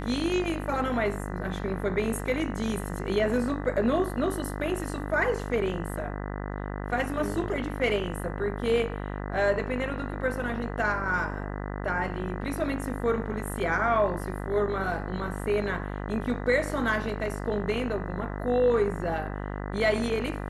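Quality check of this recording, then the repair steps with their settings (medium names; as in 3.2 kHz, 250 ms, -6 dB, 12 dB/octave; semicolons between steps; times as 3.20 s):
buzz 50 Hz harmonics 40 -34 dBFS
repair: de-hum 50 Hz, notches 40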